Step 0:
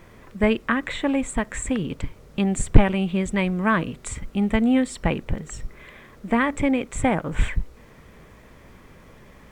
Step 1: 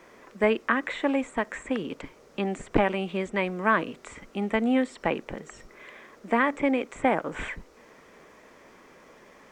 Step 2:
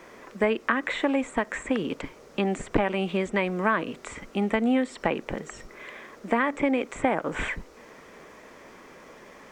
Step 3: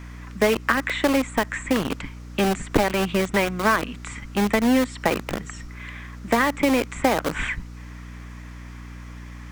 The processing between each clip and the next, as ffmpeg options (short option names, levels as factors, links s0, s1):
-filter_complex "[0:a]highshelf=f=4800:t=q:w=1.5:g=7,acrossover=split=3100[s0][s1];[s1]acompressor=threshold=0.0112:ratio=4:attack=1:release=60[s2];[s0][s2]amix=inputs=2:normalize=0,acrossover=split=250 5100:gain=0.0891 1 0.178[s3][s4][s5];[s3][s4][s5]amix=inputs=3:normalize=0"
-af "acompressor=threshold=0.0501:ratio=2.5,volume=1.68"
-filter_complex "[0:a]acrossover=split=290|880|2300[s0][s1][s2][s3];[s1]acrusher=bits=4:mix=0:aa=0.000001[s4];[s0][s4][s2][s3]amix=inputs=4:normalize=0,aeval=exprs='val(0)+0.00891*(sin(2*PI*60*n/s)+sin(2*PI*2*60*n/s)/2+sin(2*PI*3*60*n/s)/3+sin(2*PI*4*60*n/s)/4+sin(2*PI*5*60*n/s)/5)':c=same,volume=1.58"